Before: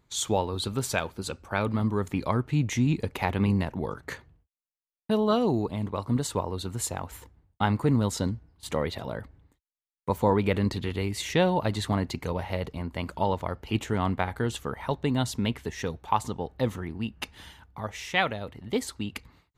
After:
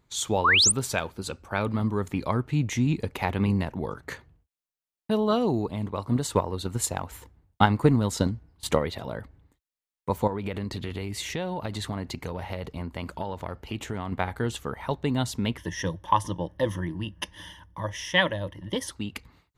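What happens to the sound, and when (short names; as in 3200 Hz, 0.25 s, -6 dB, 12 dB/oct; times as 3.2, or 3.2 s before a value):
0.44–0.72 painted sound rise 950–9900 Hz -19 dBFS
6.1–8.79 transient shaper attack +8 dB, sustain +1 dB
10.27–14.12 compressor, threshold -27 dBFS
15.57–18.91 ripple EQ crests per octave 1.2, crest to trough 14 dB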